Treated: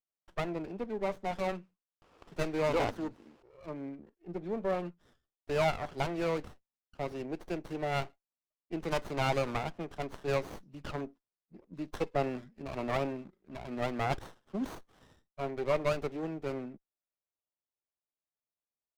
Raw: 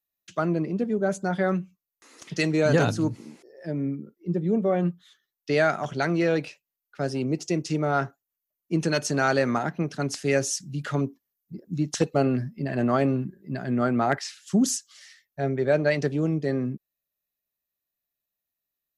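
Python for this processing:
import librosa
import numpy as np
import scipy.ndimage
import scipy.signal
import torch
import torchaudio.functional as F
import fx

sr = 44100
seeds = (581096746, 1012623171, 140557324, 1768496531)

y = fx.law_mismatch(x, sr, coded='A', at=(12.66, 14.77))
y = scipy.signal.sosfilt(scipy.signal.butter(2, 3900.0, 'lowpass', fs=sr, output='sos'), y)
y = fx.env_lowpass(y, sr, base_hz=2200.0, full_db=-21.0)
y = scipy.signal.sosfilt(scipy.signal.butter(2, 240.0, 'highpass', fs=sr, output='sos'), y)
y = fx.low_shelf(y, sr, hz=460.0, db=-11.0)
y = fx.running_max(y, sr, window=17)
y = y * 10.0 ** (-2.0 / 20.0)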